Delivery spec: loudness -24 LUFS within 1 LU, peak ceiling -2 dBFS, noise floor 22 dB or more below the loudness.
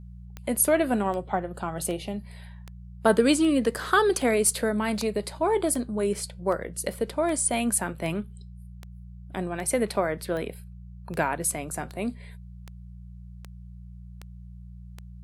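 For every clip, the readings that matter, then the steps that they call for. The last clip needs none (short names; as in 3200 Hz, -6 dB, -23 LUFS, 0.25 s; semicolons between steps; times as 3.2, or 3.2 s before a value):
clicks 20; hum 60 Hz; harmonics up to 180 Hz; hum level -40 dBFS; loudness -26.0 LUFS; peak -7.0 dBFS; loudness target -24.0 LUFS
-> de-click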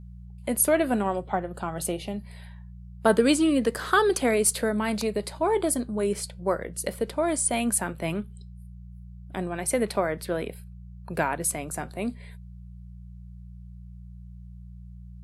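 clicks 0; hum 60 Hz; harmonics up to 180 Hz; hum level -40 dBFS
-> de-hum 60 Hz, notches 3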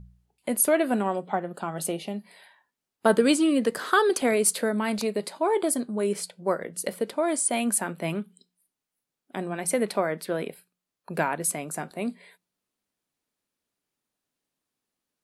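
hum none; loudness -26.0 LUFS; peak -7.5 dBFS; loudness target -24.0 LUFS
-> gain +2 dB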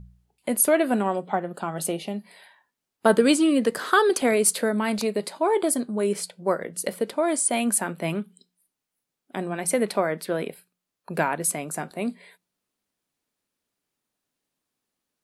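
loudness -24.0 LUFS; peak -5.5 dBFS; noise floor -85 dBFS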